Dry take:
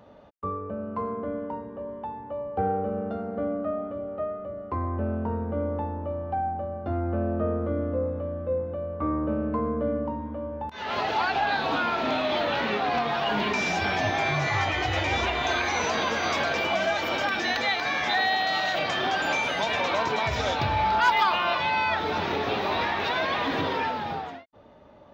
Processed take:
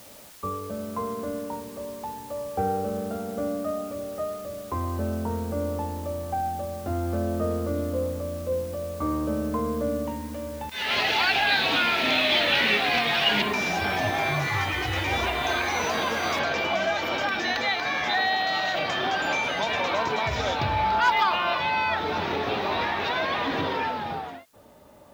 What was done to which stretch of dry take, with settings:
10.07–13.42 s: resonant high shelf 1.6 kHz +9 dB, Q 1.5
14.42–15.08 s: peaking EQ 650 Hz -10 dB 0.37 oct
16.39 s: noise floor step -49 dB -65 dB

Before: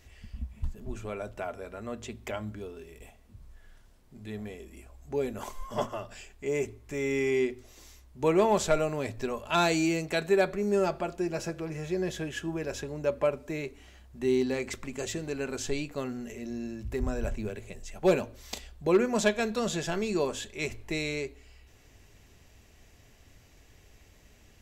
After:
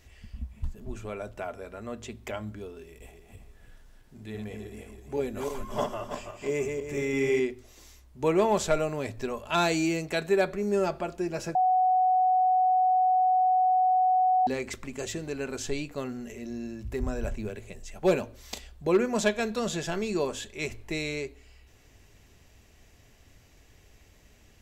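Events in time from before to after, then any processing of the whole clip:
2.87–7.40 s: backward echo that repeats 164 ms, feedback 53%, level -4 dB
11.55–14.47 s: bleep 742 Hz -19.5 dBFS

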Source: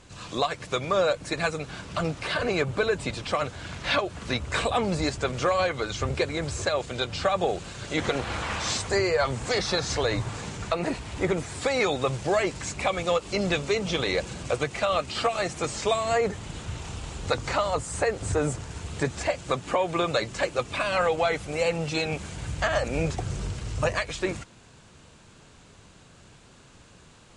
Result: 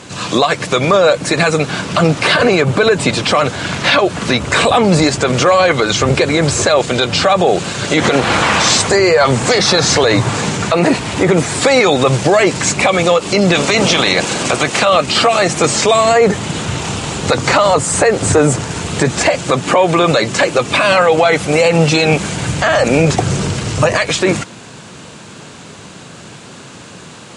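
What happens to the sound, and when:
13.54–14.84 s: spectral peaks clipped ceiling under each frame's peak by 13 dB
whole clip: Chebyshev high-pass 160 Hz, order 2; loudness maximiser +21 dB; trim -1 dB

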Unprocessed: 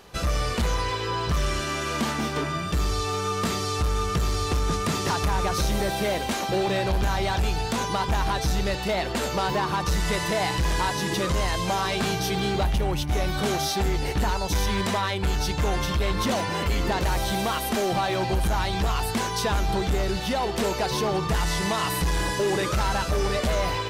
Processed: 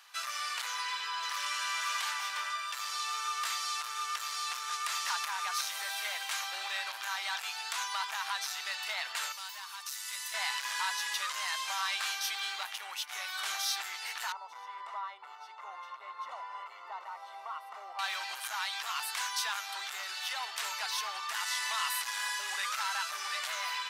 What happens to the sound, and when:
0.70–1.50 s: echo throw 520 ms, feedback 55%, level -5 dB
9.32–10.34 s: pre-emphasis filter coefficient 0.8
14.32–17.99 s: Savitzky-Golay filter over 65 samples
whole clip: high-pass 1.1 kHz 24 dB/octave; trim -3.5 dB

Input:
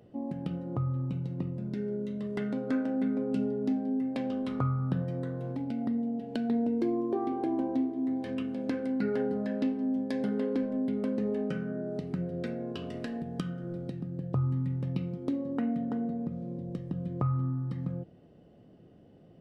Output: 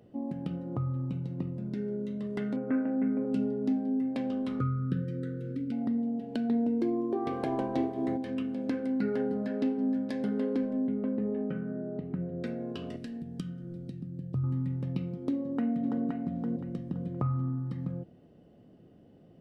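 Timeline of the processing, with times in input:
2.56–3.25 s: steep low-pass 2.6 kHz 48 dB/octave
4.60–5.72 s: brick-wall FIR band-stop 540–1200 Hz
7.25–8.16 s: spectral peaks clipped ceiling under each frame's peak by 18 dB
8.95–9.78 s: echo throw 470 ms, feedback 35%, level -11.5 dB
10.87–12.44 s: distance through air 490 m
12.96–14.44 s: peaking EQ 890 Hz -13 dB 2.4 oct
15.31–16.04 s: echo throw 520 ms, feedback 30%, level -3.5 dB
whole clip: peaking EQ 250 Hz +2.5 dB; trim -1.5 dB

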